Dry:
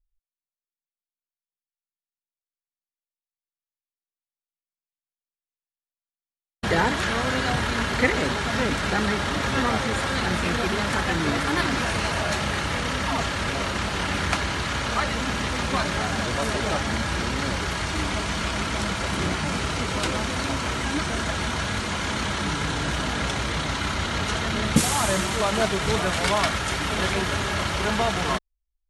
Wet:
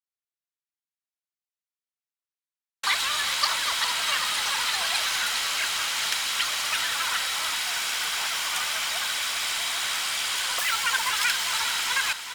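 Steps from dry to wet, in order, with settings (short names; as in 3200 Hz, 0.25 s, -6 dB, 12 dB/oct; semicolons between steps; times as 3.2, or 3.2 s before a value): HPF 420 Hz 24 dB/oct; in parallel at -9 dB: wrapped overs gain 24 dB; on the sum: air absorption 80 m; feedback echo 0.935 s, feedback 59%, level -10.5 dB; speed mistake 33 rpm record played at 78 rpm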